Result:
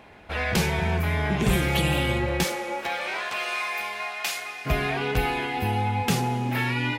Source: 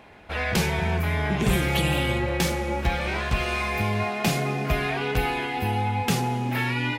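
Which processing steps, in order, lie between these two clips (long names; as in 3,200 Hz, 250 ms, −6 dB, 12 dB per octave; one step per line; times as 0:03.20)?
0:02.43–0:04.65: high-pass filter 370 Hz → 1,500 Hz 12 dB per octave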